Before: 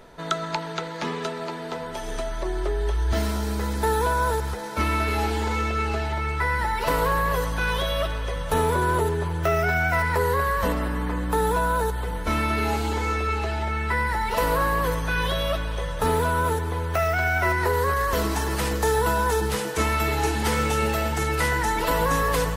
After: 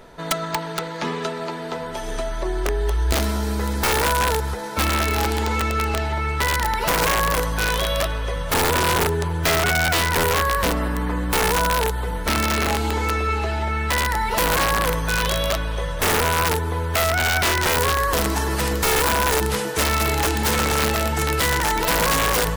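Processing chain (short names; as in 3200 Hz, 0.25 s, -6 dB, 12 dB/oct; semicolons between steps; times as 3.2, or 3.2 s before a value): wrapped overs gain 15.5 dB; gain +3 dB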